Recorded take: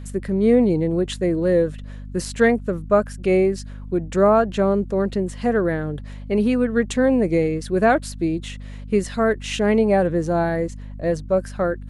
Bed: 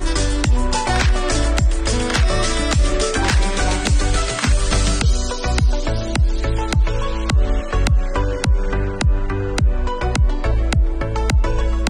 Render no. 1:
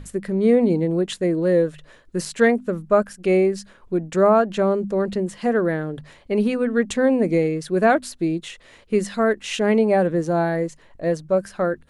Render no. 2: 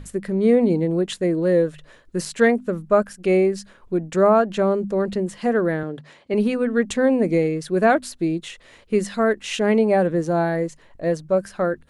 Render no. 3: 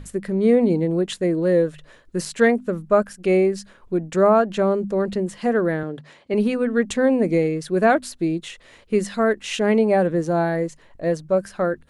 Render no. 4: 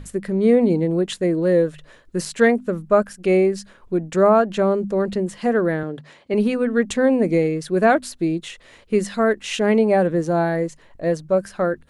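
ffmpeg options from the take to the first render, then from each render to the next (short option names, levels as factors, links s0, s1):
-af "bandreject=f=50:t=h:w=6,bandreject=f=100:t=h:w=6,bandreject=f=150:t=h:w=6,bandreject=f=200:t=h:w=6,bandreject=f=250:t=h:w=6"
-filter_complex "[0:a]asettb=1/sr,asplit=3[s0][s1][s2];[s0]atrim=end=5.834[s3];[s1]atrim=start=5.83:end=6.34,asetpts=PTS-STARTPTS,afade=t=in:d=0.004:c=qsin,afade=t=out:st=0.506:d=0.004:c=qsin,highpass=160,lowpass=7800[s4];[s2]atrim=start=6.336[s5];[s3][s4]acrossfade=d=0.004:c1=hsin:c2=qsin[s6];[s6][s5]acrossfade=d=0.004:c1=qsin:c2=hsin"
-af anull
-af "volume=1.12"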